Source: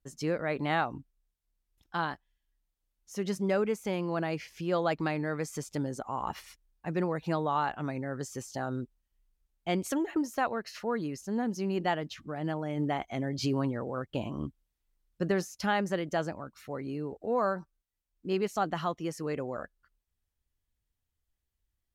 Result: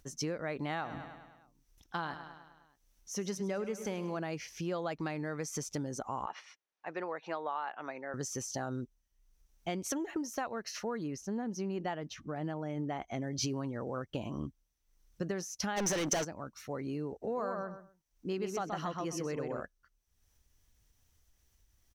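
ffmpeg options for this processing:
ffmpeg -i in.wav -filter_complex "[0:a]asplit=3[link_01][link_02][link_03];[link_01]afade=type=out:start_time=0.83:duration=0.02[link_04];[link_02]aecho=1:1:103|206|309|412|515|618:0.2|0.114|0.0648|0.037|0.0211|0.012,afade=type=in:start_time=0.83:duration=0.02,afade=type=out:start_time=4.17:duration=0.02[link_05];[link_03]afade=type=in:start_time=4.17:duration=0.02[link_06];[link_04][link_05][link_06]amix=inputs=3:normalize=0,asettb=1/sr,asplit=3[link_07][link_08][link_09];[link_07]atrim=end=6.264[link_10];[link_08]atrim=start=6.26:end=8.14,asetpts=PTS-STARTPTS,afade=type=in:duration=0.004:curve=qsin,afade=type=out:start_time=1.876:duration=0.004:curve=qsin,highpass=550,lowpass=3100[link_11];[link_09]atrim=start=8.136[link_12];[link_10][link_11]acrossfade=duration=0.004:curve1=hsin:curve2=qsin[link_13];[link_13][link_12]acrossfade=duration=0.004:curve1=qsin:curve2=hsin,asettb=1/sr,asplit=3[link_14][link_15][link_16];[link_14]atrim=end=11.034[link_17];[link_15]atrim=start=11.03:end=13.22,asetpts=PTS-STARTPTS,afade=type=in:duration=0.004:curve=qsin,afade=type=out:start_time=2.186:duration=0.004:curve=qsin,highshelf=frequency=3300:gain=-7.5[link_18];[link_16]atrim=start=13.216[link_19];[link_17][link_18]acrossfade=duration=0.004:curve1=hsin:curve2=qsin[link_20];[link_20][link_19]acrossfade=duration=0.004:curve1=qsin:curve2=hsin,asplit=3[link_21][link_22][link_23];[link_21]afade=type=out:start_time=15.76:duration=0.02[link_24];[link_22]asplit=2[link_25][link_26];[link_26]highpass=frequency=720:poles=1,volume=35dB,asoftclip=type=tanh:threshold=-16dB[link_27];[link_25][link_27]amix=inputs=2:normalize=0,lowpass=frequency=6600:poles=1,volume=-6dB,afade=type=in:start_time=15.76:duration=0.02,afade=type=out:start_time=16.23:duration=0.02[link_28];[link_23]afade=type=in:start_time=16.23:duration=0.02[link_29];[link_24][link_28][link_29]amix=inputs=3:normalize=0,asplit=3[link_30][link_31][link_32];[link_30]afade=type=out:start_time=17.22:duration=0.02[link_33];[link_31]asplit=2[link_34][link_35];[link_35]adelay=127,lowpass=frequency=2700:poles=1,volume=-3.5dB,asplit=2[link_36][link_37];[link_37]adelay=127,lowpass=frequency=2700:poles=1,volume=0.18,asplit=2[link_38][link_39];[link_39]adelay=127,lowpass=frequency=2700:poles=1,volume=0.18[link_40];[link_34][link_36][link_38][link_40]amix=inputs=4:normalize=0,afade=type=in:start_time=17.22:duration=0.02,afade=type=out:start_time=19.6:duration=0.02[link_41];[link_32]afade=type=in:start_time=19.6:duration=0.02[link_42];[link_33][link_41][link_42]amix=inputs=3:normalize=0,acompressor=threshold=-33dB:ratio=5,equalizer=frequency=5900:width=5.9:gain=12,acompressor=mode=upward:threshold=-56dB:ratio=2.5" out.wav

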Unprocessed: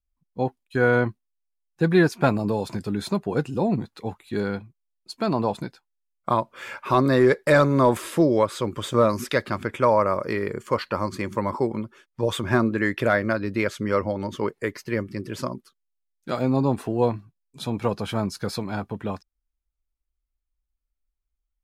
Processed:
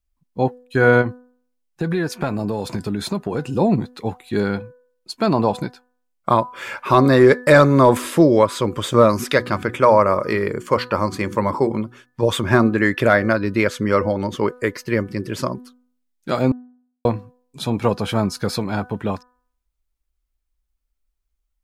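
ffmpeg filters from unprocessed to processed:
ffmpeg -i in.wav -filter_complex "[0:a]asplit=3[link_01][link_02][link_03];[link_01]afade=type=out:start_time=1.01:duration=0.02[link_04];[link_02]acompressor=threshold=-24dB:ratio=6:attack=3.2:release=140:knee=1:detection=peak,afade=type=in:start_time=1.01:duration=0.02,afade=type=out:start_time=3.48:duration=0.02[link_05];[link_03]afade=type=in:start_time=3.48:duration=0.02[link_06];[link_04][link_05][link_06]amix=inputs=3:normalize=0,asettb=1/sr,asplit=3[link_07][link_08][link_09];[link_07]atrim=end=9.274[link_10];[link_08]atrim=start=9.27:end=12.22,asetpts=PTS-STARTPTS,afade=type=in:duration=0.004:curve=qsin,afade=type=out:start_time=2.946:duration=0.004:curve=qsin,bandreject=frequency=60:width_type=h:width=6,bandreject=frequency=120:width_type=h:width=6,bandreject=frequency=180:width_type=h:width=6,bandreject=frequency=240:width_type=h:width=6,bandreject=frequency=300:width_type=h:width=6,bandreject=frequency=360:width_type=h:width=6[link_11];[link_09]atrim=start=12.216[link_12];[link_10][link_11]acrossfade=duration=0.004:curve1=hsin:curve2=qsin[link_13];[link_13][link_12]acrossfade=duration=0.004:curve1=qsin:curve2=hsin,asplit=3[link_14][link_15][link_16];[link_14]atrim=end=16.52,asetpts=PTS-STARTPTS,afade=type=out:start_time=16.516:duration=0.004:curve=hsin[link_17];[link_15]atrim=start=16.52:end=17.05,asetpts=PTS-STARTPTS,volume=0[link_18];[link_16]atrim=start=17.05,asetpts=PTS-STARTPTS,afade=type=in:duration=0.004:curve=hsin[link_19];[link_17][link_18][link_19]concat=n=3:v=0:a=1,bandreject=frequency=248.4:width_type=h:width=4,bandreject=frequency=496.8:width_type=h:width=4,bandreject=frequency=745.2:width_type=h:width=4,bandreject=frequency=993.6:width_type=h:width=4,bandreject=frequency=1242:width_type=h:width=4,bandreject=frequency=1490.4:width_type=h:width=4,bandreject=frequency=1738.8:width_type=h:width=4,volume=6dB" out.wav

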